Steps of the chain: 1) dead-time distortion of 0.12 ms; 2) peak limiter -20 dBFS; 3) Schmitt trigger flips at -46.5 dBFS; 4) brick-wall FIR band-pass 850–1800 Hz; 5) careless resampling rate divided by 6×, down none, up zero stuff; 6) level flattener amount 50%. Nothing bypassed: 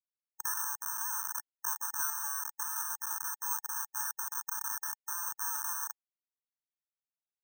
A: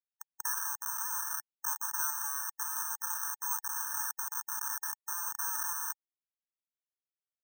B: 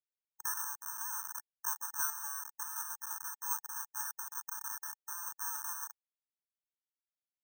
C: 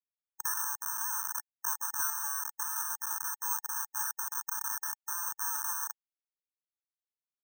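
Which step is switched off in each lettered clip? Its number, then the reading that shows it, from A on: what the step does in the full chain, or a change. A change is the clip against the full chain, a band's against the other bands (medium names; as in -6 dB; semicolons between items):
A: 1, distortion -11 dB; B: 6, momentary loudness spread change +2 LU; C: 2, loudness change +1.5 LU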